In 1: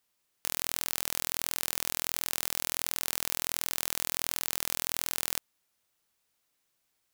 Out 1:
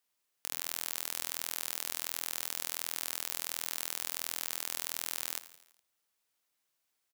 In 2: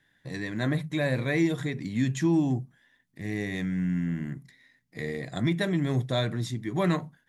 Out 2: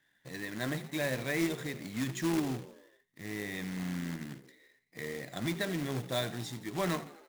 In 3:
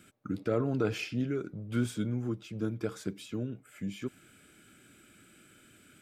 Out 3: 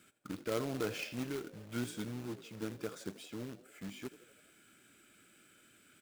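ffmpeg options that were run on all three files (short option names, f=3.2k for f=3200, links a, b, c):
-filter_complex "[0:a]lowshelf=f=220:g=-9,asplit=6[a][b][c][d][e][f];[b]adelay=83,afreqshift=55,volume=-16.5dB[g];[c]adelay=166,afreqshift=110,volume=-21.2dB[h];[d]adelay=249,afreqshift=165,volume=-26dB[i];[e]adelay=332,afreqshift=220,volume=-30.7dB[j];[f]adelay=415,afreqshift=275,volume=-35.4dB[k];[a][g][h][i][j][k]amix=inputs=6:normalize=0,acrusher=bits=2:mode=log:mix=0:aa=0.000001,volume=-4.5dB"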